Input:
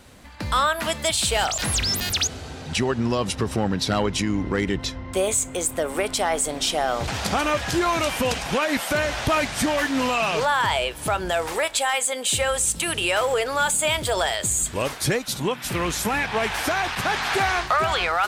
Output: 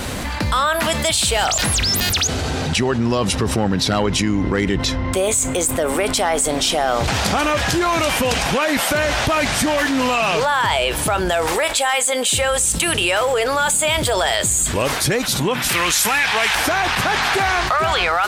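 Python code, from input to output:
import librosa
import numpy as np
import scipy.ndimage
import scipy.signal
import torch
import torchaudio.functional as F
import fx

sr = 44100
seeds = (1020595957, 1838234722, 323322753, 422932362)

y = fx.tilt_shelf(x, sr, db=-8.5, hz=840.0, at=(15.69, 16.55))
y = fx.env_flatten(y, sr, amount_pct=70)
y = y * librosa.db_to_amplitude(1.5)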